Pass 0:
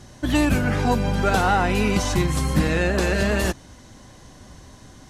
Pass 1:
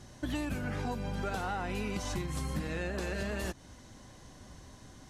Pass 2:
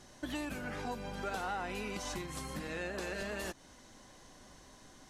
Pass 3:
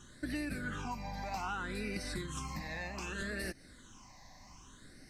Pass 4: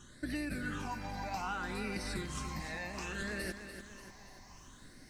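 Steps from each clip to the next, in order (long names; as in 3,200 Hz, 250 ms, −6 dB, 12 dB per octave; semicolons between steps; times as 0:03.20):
downward compressor, threshold −25 dBFS, peak gain reduction 10.5 dB; level −7 dB
parametric band 85 Hz −12 dB 2.3 octaves; level −1 dB
all-pass phaser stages 8, 0.64 Hz, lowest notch 400–1,000 Hz; level +3 dB
feedback echo at a low word length 292 ms, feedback 55%, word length 11 bits, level −9.5 dB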